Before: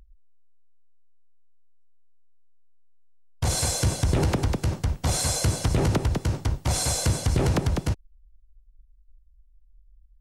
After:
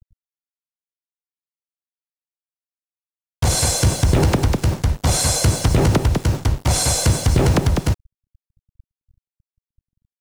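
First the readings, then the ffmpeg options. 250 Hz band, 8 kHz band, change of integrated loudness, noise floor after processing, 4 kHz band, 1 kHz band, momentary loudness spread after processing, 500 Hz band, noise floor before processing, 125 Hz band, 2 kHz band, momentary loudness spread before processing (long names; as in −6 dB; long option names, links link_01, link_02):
+7.0 dB, +7.0 dB, +7.0 dB, below −85 dBFS, +7.0 dB, +7.0 dB, 4 LU, +7.0 dB, −57 dBFS, +7.0 dB, +7.0 dB, 4 LU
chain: -af "acrusher=bits=6:mix=0:aa=0.5,volume=7dB"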